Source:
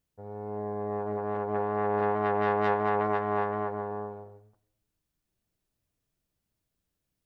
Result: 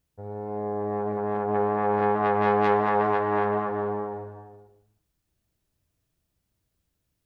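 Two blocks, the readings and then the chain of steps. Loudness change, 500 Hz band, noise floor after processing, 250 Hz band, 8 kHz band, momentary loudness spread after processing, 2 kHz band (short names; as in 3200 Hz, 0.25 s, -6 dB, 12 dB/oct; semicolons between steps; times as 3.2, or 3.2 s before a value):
+4.5 dB, +4.0 dB, -78 dBFS, +5.0 dB, n/a, 13 LU, +3.5 dB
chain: bell 71 Hz +5.5 dB 1.4 oct; non-linear reverb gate 0.49 s flat, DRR 8.5 dB; Doppler distortion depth 0.11 ms; gain +3.5 dB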